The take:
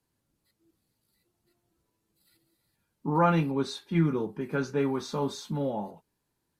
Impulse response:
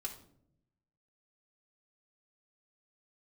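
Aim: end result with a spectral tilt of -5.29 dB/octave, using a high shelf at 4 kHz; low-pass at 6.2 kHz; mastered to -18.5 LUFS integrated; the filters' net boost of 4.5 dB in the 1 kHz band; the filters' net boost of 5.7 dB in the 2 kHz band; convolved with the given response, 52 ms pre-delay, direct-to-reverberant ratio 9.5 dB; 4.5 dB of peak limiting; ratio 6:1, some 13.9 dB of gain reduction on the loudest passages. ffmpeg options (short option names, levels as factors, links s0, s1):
-filter_complex "[0:a]lowpass=6200,equalizer=f=1000:t=o:g=4,equalizer=f=2000:t=o:g=7,highshelf=f=4000:g=-3.5,acompressor=threshold=0.0316:ratio=6,alimiter=level_in=1.19:limit=0.0631:level=0:latency=1,volume=0.841,asplit=2[s0][s1];[1:a]atrim=start_sample=2205,adelay=52[s2];[s1][s2]afir=irnorm=-1:irlink=0,volume=0.398[s3];[s0][s3]amix=inputs=2:normalize=0,volume=7.94"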